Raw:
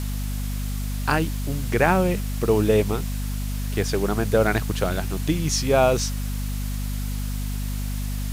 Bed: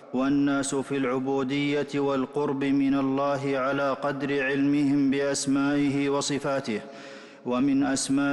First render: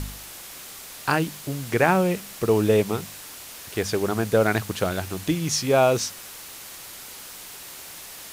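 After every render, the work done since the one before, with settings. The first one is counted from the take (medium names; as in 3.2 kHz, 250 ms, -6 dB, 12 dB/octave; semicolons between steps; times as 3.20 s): de-hum 50 Hz, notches 5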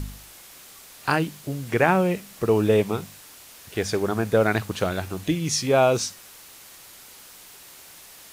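noise print and reduce 6 dB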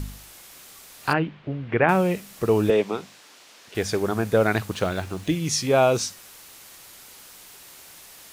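1.13–1.89 s: low-pass 2.9 kHz 24 dB/octave; 2.70–3.75 s: three-band isolator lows -18 dB, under 200 Hz, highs -15 dB, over 7 kHz; 4.74–5.33 s: median filter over 3 samples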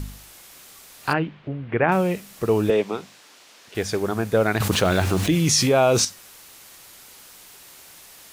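1.48–1.92 s: distance through air 150 m; 4.60–6.05 s: level flattener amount 70%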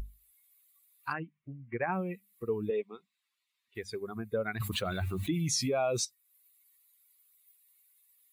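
expander on every frequency bin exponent 2; compression 1.5:1, threshold -45 dBFS, peak gain reduction 10.5 dB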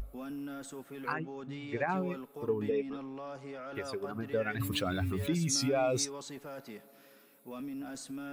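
add bed -17.5 dB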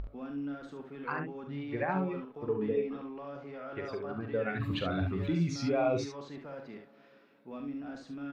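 distance through air 250 m; early reflections 42 ms -8 dB, 70 ms -6.5 dB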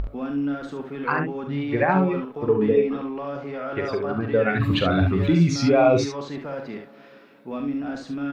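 trim +12 dB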